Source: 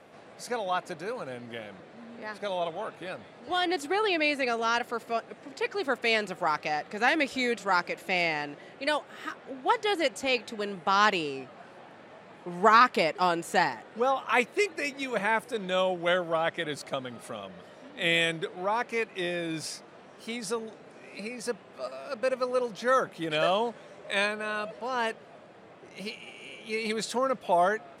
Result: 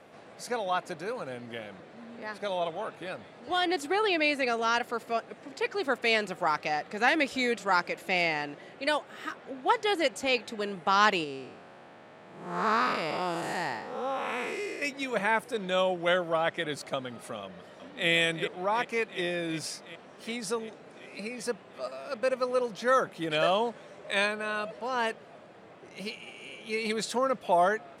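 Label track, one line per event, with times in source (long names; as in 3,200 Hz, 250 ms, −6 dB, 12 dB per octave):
11.240000	14.820000	spectrum smeared in time width 247 ms
17.420000	18.100000	delay throw 370 ms, feedback 75%, level −9.5 dB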